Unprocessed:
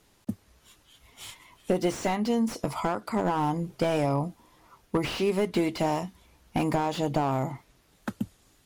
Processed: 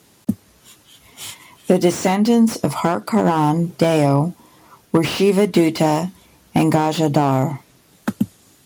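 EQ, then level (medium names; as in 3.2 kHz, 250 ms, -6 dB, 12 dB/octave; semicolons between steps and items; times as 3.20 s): high-pass 140 Hz 12 dB/octave; bass shelf 260 Hz +8.5 dB; treble shelf 5.6 kHz +6 dB; +8.0 dB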